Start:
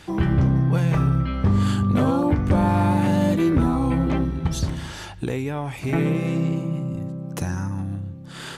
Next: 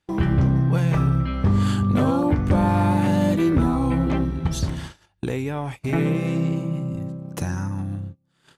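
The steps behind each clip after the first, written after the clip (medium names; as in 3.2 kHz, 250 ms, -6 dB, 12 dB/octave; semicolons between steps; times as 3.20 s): gate -31 dBFS, range -30 dB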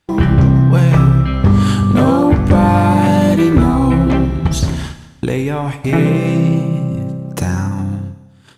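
Schroeder reverb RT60 1.2 s, DRR 11 dB; trim +8.5 dB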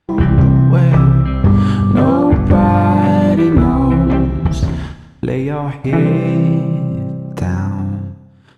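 low-pass 1.8 kHz 6 dB/octave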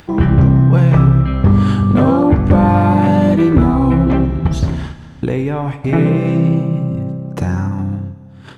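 upward compressor, threshold -23 dBFS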